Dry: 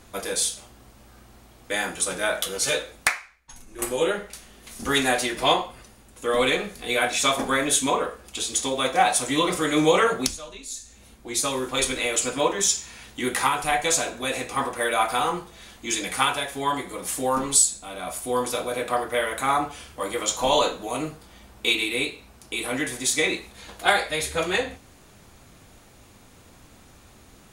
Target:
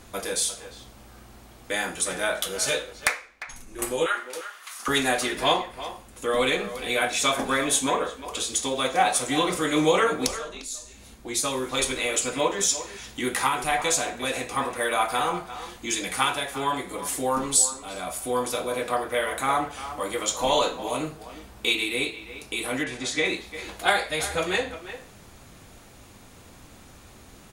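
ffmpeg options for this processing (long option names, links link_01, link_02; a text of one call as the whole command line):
ffmpeg -i in.wav -filter_complex "[0:a]asplit=3[link_01][link_02][link_03];[link_01]afade=type=out:start_time=22.83:duration=0.02[link_04];[link_02]lowpass=4800,afade=type=in:start_time=22.83:duration=0.02,afade=type=out:start_time=23.24:duration=0.02[link_05];[link_03]afade=type=in:start_time=23.24:duration=0.02[link_06];[link_04][link_05][link_06]amix=inputs=3:normalize=0,asplit=2[link_07][link_08];[link_08]acompressor=threshold=-37dB:ratio=6,volume=-3dB[link_09];[link_07][link_09]amix=inputs=2:normalize=0,asettb=1/sr,asplit=3[link_10][link_11][link_12];[link_10]atrim=end=4.064[link_13];[link_11]atrim=start=4.06:end=4.88,asetpts=PTS-STARTPTS,afade=type=in:duration=0.004:curve=qsin,afade=type=out:start_time=0.816:duration=0.004:curve=qsin,highpass=frequency=1200:width_type=q:width=2.8[link_14];[link_12]atrim=start=4.876[link_15];[link_13][link_14]acrossfade=duration=0.004:curve1=hsin:curve2=qsin[link_16];[link_16][link_15]acrossfade=duration=0.004:curve1=qsin:curve2=hsin,asplit=2[link_17][link_18];[link_18]adelay=350,highpass=300,lowpass=3400,asoftclip=type=hard:threshold=-13.5dB,volume=-12dB[link_19];[link_17][link_19]amix=inputs=2:normalize=0,volume=-2.5dB" out.wav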